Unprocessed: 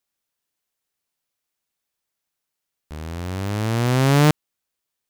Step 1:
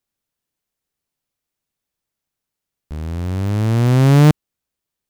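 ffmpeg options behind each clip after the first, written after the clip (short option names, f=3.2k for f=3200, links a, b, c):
-af "lowshelf=f=370:g=10,volume=-2dB"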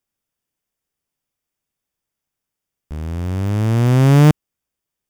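-af "bandreject=f=4.1k:w=6.7"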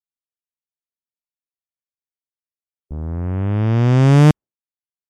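-af "afftdn=nr=24:nf=-41"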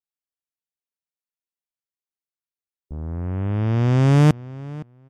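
-filter_complex "[0:a]asplit=2[a][b];[b]adelay=515,lowpass=f=2.9k:p=1,volume=-19dB,asplit=2[c][d];[d]adelay=515,lowpass=f=2.9k:p=1,volume=0.17[e];[a][c][e]amix=inputs=3:normalize=0,volume=-4dB"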